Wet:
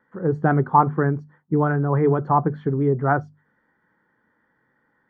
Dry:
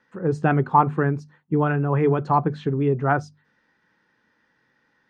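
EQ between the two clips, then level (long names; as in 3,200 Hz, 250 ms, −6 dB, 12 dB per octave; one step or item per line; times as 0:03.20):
Savitzky-Golay smoothing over 41 samples
+1.0 dB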